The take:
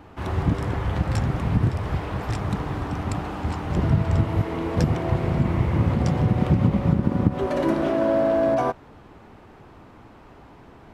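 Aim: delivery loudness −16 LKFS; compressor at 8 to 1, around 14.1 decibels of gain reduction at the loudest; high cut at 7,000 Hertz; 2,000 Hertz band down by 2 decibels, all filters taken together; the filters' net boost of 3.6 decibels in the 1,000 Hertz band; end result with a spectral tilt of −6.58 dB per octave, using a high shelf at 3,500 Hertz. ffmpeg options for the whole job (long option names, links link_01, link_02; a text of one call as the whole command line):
ffmpeg -i in.wav -af "lowpass=7000,equalizer=frequency=1000:width_type=o:gain=6,equalizer=frequency=2000:width_type=o:gain=-3.5,highshelf=frequency=3500:gain=-6,acompressor=threshold=-30dB:ratio=8,volume=18.5dB" out.wav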